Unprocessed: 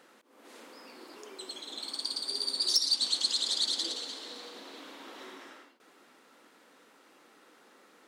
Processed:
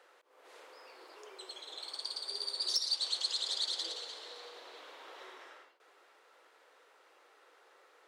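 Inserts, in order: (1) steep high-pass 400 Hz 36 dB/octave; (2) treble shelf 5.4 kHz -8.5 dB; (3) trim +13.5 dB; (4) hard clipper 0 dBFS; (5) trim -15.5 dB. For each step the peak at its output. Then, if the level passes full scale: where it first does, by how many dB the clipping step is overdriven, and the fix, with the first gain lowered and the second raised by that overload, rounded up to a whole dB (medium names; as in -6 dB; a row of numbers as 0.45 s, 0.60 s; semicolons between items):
-12.5 dBFS, -17.5 dBFS, -4.0 dBFS, -4.0 dBFS, -19.5 dBFS; nothing clips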